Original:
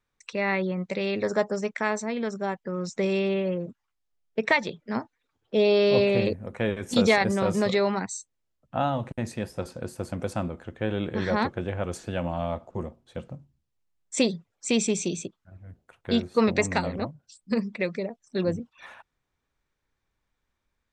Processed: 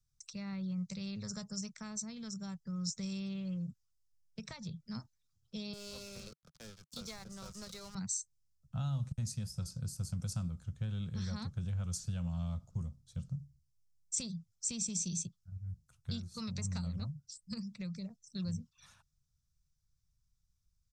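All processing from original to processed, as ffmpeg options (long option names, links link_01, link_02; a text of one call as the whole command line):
ffmpeg -i in.wav -filter_complex "[0:a]asettb=1/sr,asplit=3[link_01][link_02][link_03];[link_01]atrim=end=5.734[link_04];[link_02]atrim=start=5.73:end=7.95,asetpts=PTS-STARTPTS,afade=type=in:duration=0.004:curve=qsin,afade=type=out:start_time=2.216:duration=0.004:curve=qsin,highpass=frequency=310:width=0.5412,highpass=frequency=310:width=1.3066,aemphasis=mode=reproduction:type=75kf,aeval=exprs='sgn(val(0))*max(abs(val(0))-0.0126,0)':channel_layout=same[link_05];[link_03]atrim=start=7.946[link_06];[link_04][link_05]acrossfade=duration=0.004:curve1=hsin:curve2=qsin[link_07];[link_07][link_06]acrossfade=duration=0.004:curve1=qsin:curve2=hsin,highshelf=frequency=5300:gain=-11.5,acrossover=split=230|880|1900[link_08][link_09][link_10][link_11];[link_08]acompressor=threshold=-37dB:ratio=4[link_12];[link_09]acompressor=threshold=-28dB:ratio=4[link_13];[link_10]acompressor=threshold=-35dB:ratio=4[link_14];[link_11]acompressor=threshold=-42dB:ratio=4[link_15];[link_12][link_13][link_14][link_15]amix=inputs=4:normalize=0,firequalizer=gain_entry='entry(150,0);entry(300,-30);entry(850,-27);entry(1300,-18);entry(1800,-26);entry(5200,6)':delay=0.05:min_phase=1,volume=3.5dB" out.wav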